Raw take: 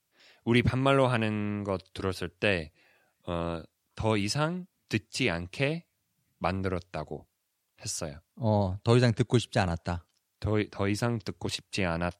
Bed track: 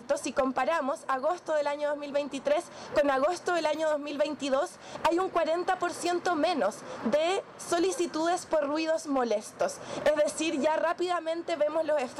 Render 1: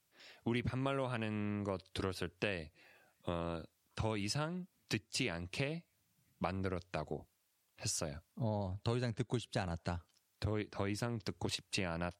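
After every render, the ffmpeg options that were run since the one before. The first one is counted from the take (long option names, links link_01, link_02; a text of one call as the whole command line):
ffmpeg -i in.wav -af "acompressor=threshold=-35dB:ratio=4" out.wav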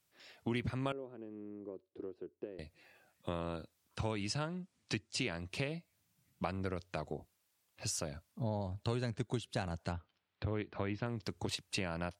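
ffmpeg -i in.wav -filter_complex "[0:a]asettb=1/sr,asplit=3[link_01][link_02][link_03];[link_01]atrim=end=0.924[link_04];[link_02]atrim=start=0.92:end=2.59,asetpts=PTS-STARTPTS,afade=type=in:duration=0.004:curve=qsin,afade=type=out:start_time=1.666:duration=0.004:curve=qsin,bandpass=frequency=360:width_type=q:width=3.6[link_05];[link_03]atrim=start=2.586[link_06];[link_04][link_05]acrossfade=duration=0.004:curve1=hsin:curve2=qsin[link_07];[link_07][link_06]acrossfade=duration=0.004:curve1=qsin:curve2=hsin,asettb=1/sr,asplit=3[link_08][link_09][link_10];[link_08]atrim=end=4.144[link_11];[link_09]atrim=start=4.14:end=5.38,asetpts=PTS-STARTPTS,afade=type=in:duration=0.004:curve=qsin,afade=type=out:start_time=1.236:duration=0.004:curve=qsin,lowpass=frequency=9400:width=0.5412,lowpass=frequency=9400:width=1.3066[link_12];[link_10]atrim=start=5.376[link_13];[link_11][link_12]acrossfade=duration=0.004:curve1=hsin:curve2=qsin[link_14];[link_14][link_13]acrossfade=duration=0.004:curve1=qsin:curve2=hsin,asettb=1/sr,asplit=3[link_15][link_16][link_17];[link_15]atrim=end=9.924[link_18];[link_16]atrim=start=9.92:end=11.06,asetpts=PTS-STARTPTS,afade=type=in:duration=0.004:curve=qsin,afade=type=out:start_time=1.136:duration=0.004:curve=qsin,lowpass=frequency=3600:width=0.5412,lowpass=frequency=3600:width=1.3066[link_19];[link_17]atrim=start=11.056[link_20];[link_18][link_19]acrossfade=duration=0.004:curve1=hsin:curve2=qsin[link_21];[link_21][link_20]acrossfade=duration=0.004:curve1=qsin:curve2=hsin" out.wav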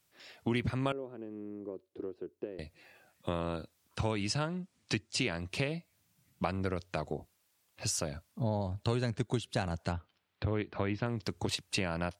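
ffmpeg -i in.wav -af "volume=4.5dB" out.wav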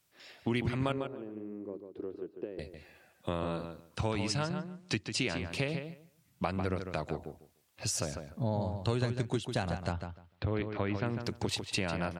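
ffmpeg -i in.wav -filter_complex "[0:a]asplit=2[link_01][link_02];[link_02]adelay=149,lowpass=frequency=3500:poles=1,volume=-7dB,asplit=2[link_03][link_04];[link_04]adelay=149,lowpass=frequency=3500:poles=1,volume=0.18,asplit=2[link_05][link_06];[link_06]adelay=149,lowpass=frequency=3500:poles=1,volume=0.18[link_07];[link_01][link_03][link_05][link_07]amix=inputs=4:normalize=0" out.wav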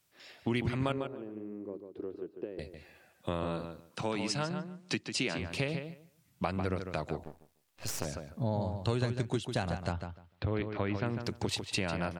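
ffmpeg -i in.wav -filter_complex "[0:a]asettb=1/sr,asplit=3[link_01][link_02][link_03];[link_01]atrim=end=3.904[link_04];[link_02]atrim=start=3.9:end=5.38,asetpts=PTS-STARTPTS,afade=type=in:duration=0.004:curve=qsin,afade=type=out:start_time=1.476:duration=0.004:curve=qsin,highpass=frequency=140:width=0.5412,highpass=frequency=140:width=1.3066[link_05];[link_03]atrim=start=5.376[link_06];[link_04][link_05]acrossfade=duration=0.004:curve1=hsin:curve2=qsin[link_07];[link_07][link_06]acrossfade=duration=0.004:curve1=qsin:curve2=hsin,asettb=1/sr,asplit=3[link_08][link_09][link_10];[link_08]atrim=end=7.244[link_11];[link_09]atrim=start=7.24:end=8.05,asetpts=PTS-STARTPTS,afade=type=in:duration=0.004:curve=qsin,afade=type=out:start_time=0.806:duration=0.004:curve=qsin,aeval=exprs='max(val(0),0)':channel_layout=same[link_12];[link_10]atrim=start=8.046[link_13];[link_11][link_12]acrossfade=duration=0.004:curve1=hsin:curve2=qsin[link_14];[link_14][link_13]acrossfade=duration=0.004:curve1=qsin:curve2=hsin" out.wav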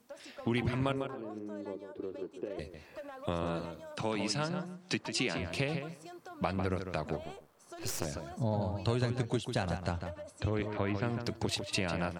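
ffmpeg -i in.wav -i bed.wav -filter_complex "[1:a]volume=-20.5dB[link_01];[0:a][link_01]amix=inputs=2:normalize=0" out.wav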